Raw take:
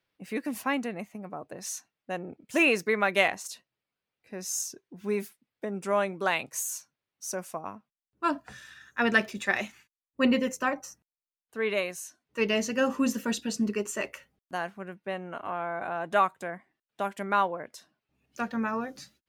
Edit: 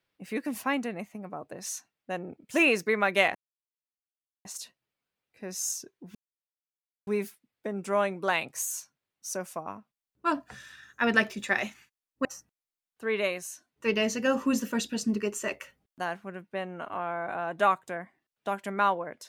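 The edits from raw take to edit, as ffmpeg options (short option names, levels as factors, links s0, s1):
-filter_complex "[0:a]asplit=4[s0][s1][s2][s3];[s0]atrim=end=3.35,asetpts=PTS-STARTPTS,afade=t=out:st=3.346:d=0.004:c=hsin,apad=pad_dur=1.1[s4];[s1]atrim=start=3.35:end=5.05,asetpts=PTS-STARTPTS,afade=t=in:d=0.004:c=hsin,afade=t=out:st=1.696:d=0.004:c=hsin,apad=pad_dur=0.92[s5];[s2]atrim=start=5.05:end=10.232,asetpts=PTS-STARTPTS,afade=t=in:d=0.004:c=hsin[s6];[s3]atrim=start=10.778[s7];[s4][s5][s6]concat=n=3:v=0:a=1[s8];[s8][s7]acrossfade=d=0.004:c1=hsin:c2=hsin"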